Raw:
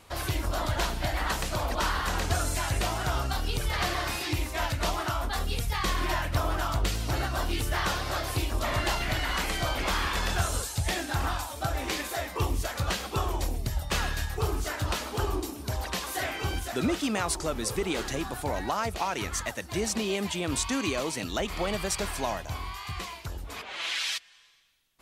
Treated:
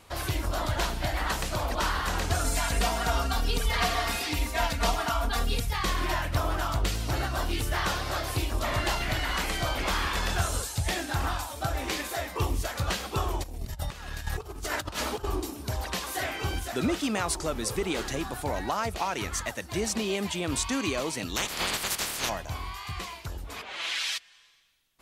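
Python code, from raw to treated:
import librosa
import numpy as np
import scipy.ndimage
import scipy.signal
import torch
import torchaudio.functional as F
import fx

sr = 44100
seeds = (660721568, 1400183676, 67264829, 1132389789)

y = fx.comb(x, sr, ms=4.3, depth=0.82, at=(2.44, 5.6))
y = fx.over_compress(y, sr, threshold_db=-34.0, ratio=-0.5, at=(13.42, 15.23), fade=0.02)
y = fx.spec_clip(y, sr, under_db=28, at=(21.35, 22.28), fade=0.02)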